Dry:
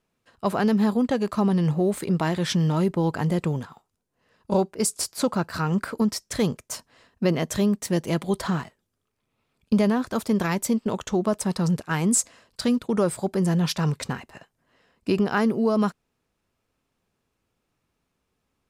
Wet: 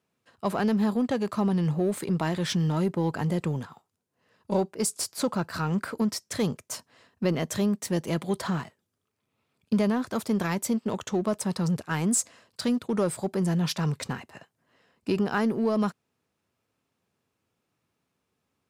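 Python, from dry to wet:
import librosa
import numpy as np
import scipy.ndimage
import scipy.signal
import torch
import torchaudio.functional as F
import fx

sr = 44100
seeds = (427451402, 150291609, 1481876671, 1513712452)

p1 = scipy.signal.sosfilt(scipy.signal.butter(4, 80.0, 'highpass', fs=sr, output='sos'), x)
p2 = np.clip(10.0 ** (29.0 / 20.0) * p1, -1.0, 1.0) / 10.0 ** (29.0 / 20.0)
p3 = p1 + (p2 * librosa.db_to_amplitude(-8.0))
y = p3 * librosa.db_to_amplitude(-4.5)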